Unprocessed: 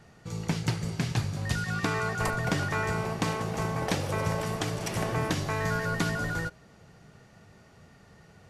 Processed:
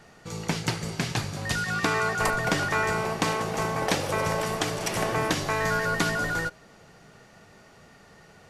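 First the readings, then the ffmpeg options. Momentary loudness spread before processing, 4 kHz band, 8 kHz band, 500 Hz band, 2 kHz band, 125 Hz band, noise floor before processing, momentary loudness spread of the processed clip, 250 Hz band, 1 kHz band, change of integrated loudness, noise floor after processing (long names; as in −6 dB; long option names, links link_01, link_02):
3 LU, +5.5 dB, +5.5 dB, +4.0 dB, +5.5 dB, −2.0 dB, −56 dBFS, 5 LU, +0.5 dB, +5.0 dB, +3.5 dB, −54 dBFS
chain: -af "equalizer=frequency=87:width=0.5:gain=-9.5,volume=5.5dB"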